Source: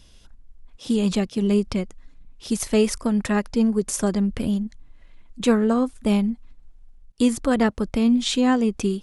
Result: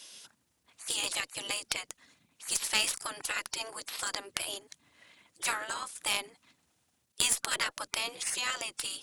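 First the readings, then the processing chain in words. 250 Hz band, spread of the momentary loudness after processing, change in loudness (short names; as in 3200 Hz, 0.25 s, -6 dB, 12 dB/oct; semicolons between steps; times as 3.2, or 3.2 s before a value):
-34.5 dB, 14 LU, -10.0 dB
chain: spectral gate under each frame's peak -20 dB weak; HPF 99 Hz; tilt +3 dB/oct; in parallel at -2 dB: compressor, threshold -40 dBFS, peak gain reduction 15.5 dB; on the sum: added harmonics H 2 -10 dB, 7 -28 dB, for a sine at -8.5 dBFS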